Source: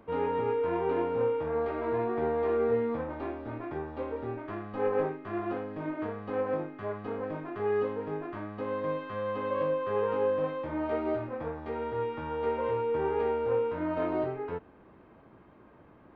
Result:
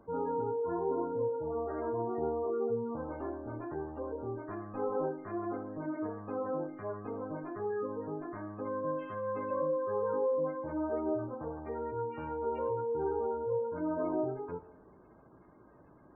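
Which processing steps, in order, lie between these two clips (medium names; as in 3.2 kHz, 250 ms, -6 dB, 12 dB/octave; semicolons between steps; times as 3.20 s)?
spectral gate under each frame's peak -20 dB strong; two-slope reverb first 0.63 s, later 2.3 s, DRR 9.5 dB; trim -3.5 dB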